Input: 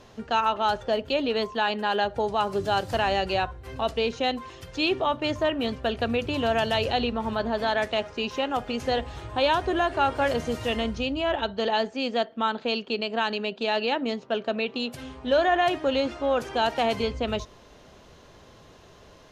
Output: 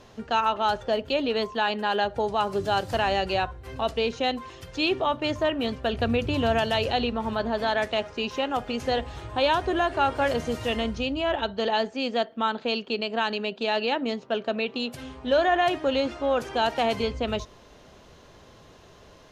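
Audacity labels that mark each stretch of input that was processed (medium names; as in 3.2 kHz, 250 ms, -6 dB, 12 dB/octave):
5.930000	6.590000	bass shelf 170 Hz +7.5 dB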